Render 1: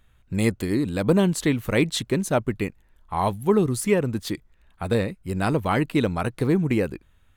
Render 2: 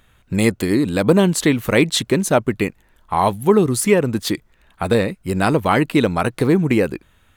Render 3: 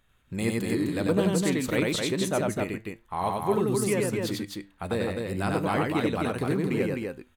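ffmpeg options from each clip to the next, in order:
ffmpeg -i in.wav -filter_complex "[0:a]lowshelf=frequency=100:gain=-10.5,asplit=2[link_01][link_02];[link_02]acompressor=threshold=-28dB:ratio=6,volume=-2.5dB[link_03];[link_01][link_03]amix=inputs=2:normalize=0,volume=5dB" out.wav
ffmpeg -i in.wav -filter_complex "[0:a]flanger=delay=7:depth=4.8:regen=81:speed=0.3:shape=triangular,asplit=2[link_01][link_02];[link_02]aecho=0:1:93.29|256.6:0.794|0.631[link_03];[link_01][link_03]amix=inputs=2:normalize=0,volume=-8dB" out.wav

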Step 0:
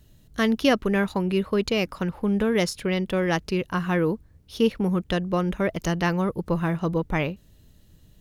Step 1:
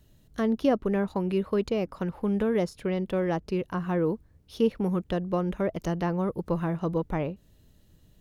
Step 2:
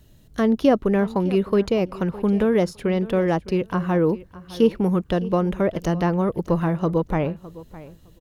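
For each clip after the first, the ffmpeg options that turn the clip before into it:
ffmpeg -i in.wav -filter_complex "[0:a]equalizer=frequency=580:width_type=o:width=2.9:gain=3,acrossover=split=1100[link_01][link_02];[link_02]acompressor=threshold=-37dB:ratio=6[link_03];[link_01][link_03]amix=inputs=2:normalize=0,volume=-5dB" out.wav
ffmpeg -i in.wav -af "aecho=1:1:610|1220:0.126|0.0201,volume=6.5dB" out.wav

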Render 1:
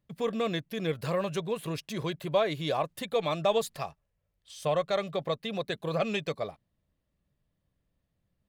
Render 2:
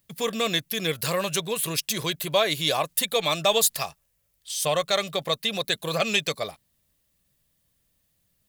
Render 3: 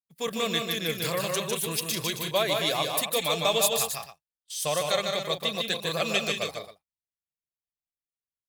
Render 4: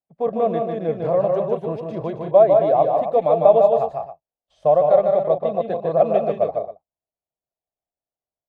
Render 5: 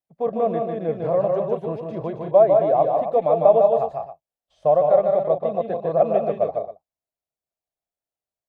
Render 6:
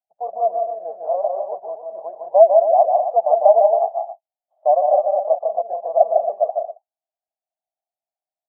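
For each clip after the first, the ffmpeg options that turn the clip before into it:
ffmpeg -i in.wav -af "crystalizer=i=7.5:c=0,volume=1dB" out.wav
ffmpeg -i in.wav -af "aecho=1:1:151.6|186.6|271.1:0.631|0.316|0.316,agate=range=-33dB:threshold=-31dB:ratio=3:detection=peak,volume=-4dB" out.wav
ffmpeg -i in.wav -af "lowpass=frequency=680:width_type=q:width=4.1,volume=5dB" out.wav
ffmpeg -i in.wav -filter_complex "[0:a]acrossover=split=2700[link_01][link_02];[link_02]acompressor=threshold=-57dB:ratio=4:attack=1:release=60[link_03];[link_01][link_03]amix=inputs=2:normalize=0,volume=-1.5dB" out.wav
ffmpeg -i in.wav -af "asuperpass=centerf=730:order=4:qfactor=3.2,volume=6dB" out.wav

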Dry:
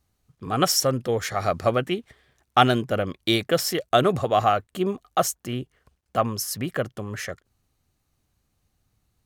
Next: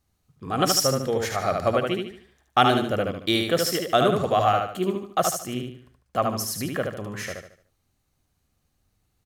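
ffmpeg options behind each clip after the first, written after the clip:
ffmpeg -i in.wav -filter_complex "[0:a]bandreject=frequency=60:width_type=h:width=6,bandreject=frequency=120:width_type=h:width=6,asplit=2[link_01][link_02];[link_02]aecho=0:1:74|148|222|296|370:0.631|0.233|0.0864|0.032|0.0118[link_03];[link_01][link_03]amix=inputs=2:normalize=0,volume=-1.5dB" out.wav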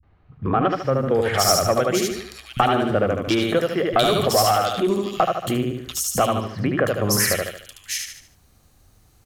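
ffmpeg -i in.wav -filter_complex "[0:a]aeval=exprs='0.708*sin(PI/2*2.51*val(0)/0.708)':channel_layout=same,acompressor=threshold=-20dB:ratio=6,acrossover=split=180|2600[link_01][link_02][link_03];[link_02]adelay=30[link_04];[link_03]adelay=720[link_05];[link_01][link_04][link_05]amix=inputs=3:normalize=0,volume=3.5dB" out.wav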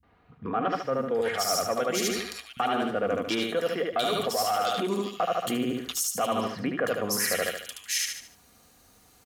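ffmpeg -i in.wav -af "highpass=frequency=280:poles=1,aecho=1:1:4.2:0.4,areverse,acompressor=threshold=-27dB:ratio=6,areverse,volume=2.5dB" out.wav

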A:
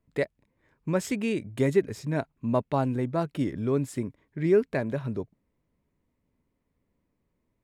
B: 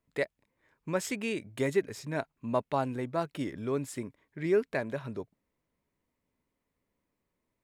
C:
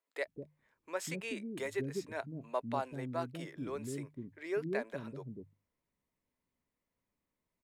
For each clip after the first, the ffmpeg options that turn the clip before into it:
ffmpeg -i in.wav -af "lowshelf=frequency=380:gain=-10" out.wav
ffmpeg -i in.wav -filter_complex "[0:a]bandreject=frequency=50:width_type=h:width=6,bandreject=frequency=100:width_type=h:width=6,bandreject=frequency=150:width_type=h:width=6,acrossover=split=370[link_01][link_02];[link_01]adelay=200[link_03];[link_03][link_02]amix=inputs=2:normalize=0,volume=-5dB" out.wav

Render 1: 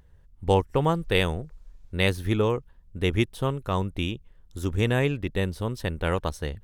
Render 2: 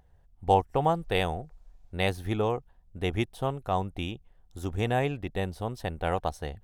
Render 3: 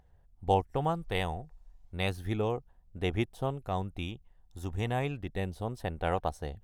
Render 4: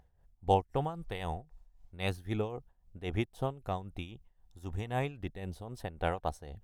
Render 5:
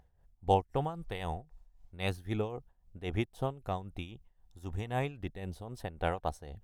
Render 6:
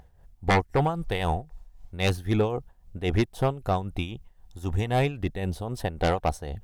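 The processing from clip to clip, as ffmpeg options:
ffmpeg -i in.wav -af "equalizer=frequency=740:width=3.4:gain=14,volume=-5.5dB" out.wav
ffmpeg -i in.wav -af "aphaser=in_gain=1:out_gain=1:delay=1.1:decay=0.28:speed=0.33:type=sinusoidal,volume=-4.5dB" out.wav
ffmpeg -i in.wav -af "tremolo=f=3.8:d=0.73" out.wav
ffmpeg -i in.wav -af anull out.wav
ffmpeg -i in.wav -af "aeval=exprs='0.2*sin(PI/2*2.82*val(0)/0.2)':channel_layout=same,volume=-1.5dB" out.wav

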